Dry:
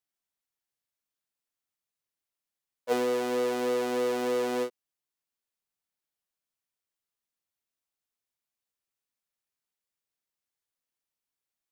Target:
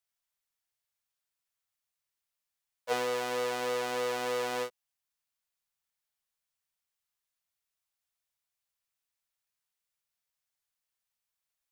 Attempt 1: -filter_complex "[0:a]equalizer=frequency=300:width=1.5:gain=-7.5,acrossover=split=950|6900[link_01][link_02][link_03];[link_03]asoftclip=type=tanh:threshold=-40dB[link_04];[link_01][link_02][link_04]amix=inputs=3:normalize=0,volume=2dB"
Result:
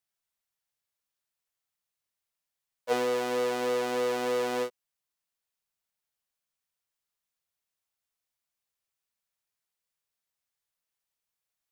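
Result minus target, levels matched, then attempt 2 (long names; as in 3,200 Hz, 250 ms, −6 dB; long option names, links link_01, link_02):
250 Hz band +4.0 dB
-filter_complex "[0:a]equalizer=frequency=300:width=1.5:gain=-19,acrossover=split=950|6900[link_01][link_02][link_03];[link_03]asoftclip=type=tanh:threshold=-40dB[link_04];[link_01][link_02][link_04]amix=inputs=3:normalize=0,volume=2dB"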